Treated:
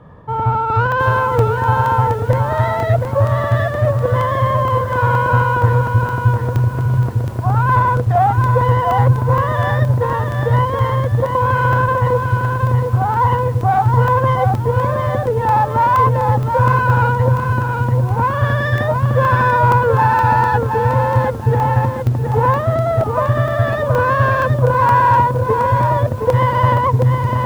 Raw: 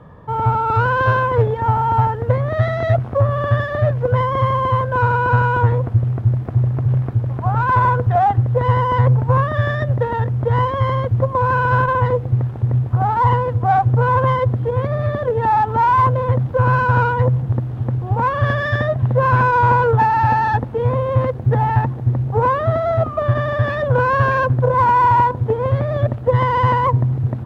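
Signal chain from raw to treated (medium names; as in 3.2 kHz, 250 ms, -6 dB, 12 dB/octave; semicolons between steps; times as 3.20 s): in parallel at -1 dB: volume shaper 138 bpm, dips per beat 2, -6 dB, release 129 ms; on the sum: crackling interface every 0.47 s, samples 64, zero, from 0.92 s; bit-crushed delay 719 ms, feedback 35%, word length 6-bit, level -5 dB; trim -4.5 dB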